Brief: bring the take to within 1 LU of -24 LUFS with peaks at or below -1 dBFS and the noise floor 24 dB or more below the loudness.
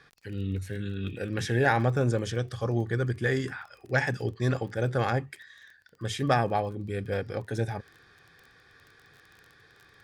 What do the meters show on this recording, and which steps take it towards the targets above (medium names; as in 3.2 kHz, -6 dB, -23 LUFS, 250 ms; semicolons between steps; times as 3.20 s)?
tick rate 23 per s; loudness -29.5 LUFS; peak level -9.0 dBFS; loudness target -24.0 LUFS
-> de-click; trim +5.5 dB